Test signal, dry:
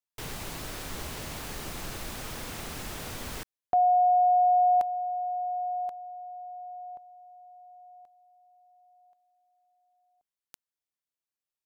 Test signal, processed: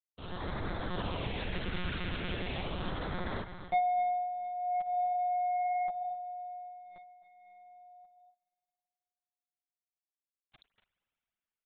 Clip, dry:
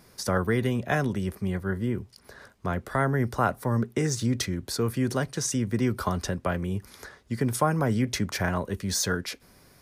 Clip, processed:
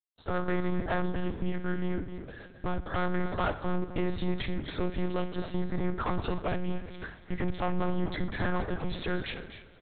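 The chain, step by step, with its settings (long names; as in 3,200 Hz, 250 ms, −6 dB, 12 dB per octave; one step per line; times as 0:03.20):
fade in at the beginning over 0.52 s
in parallel at −1.5 dB: downward compressor 6 to 1, threshold −32 dBFS
on the sum: dead-zone distortion −49.5 dBFS
auto-filter notch sine 0.39 Hz 750–2,800 Hz
soft clipping −24 dBFS
multi-tap delay 56/67/114/250/253/290 ms −15.5/−19.5/−20/−16/−13.5/−16.5 dB
spring reverb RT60 3.1 s, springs 53 ms, chirp 30 ms, DRR 16 dB
one-pitch LPC vocoder at 8 kHz 180 Hz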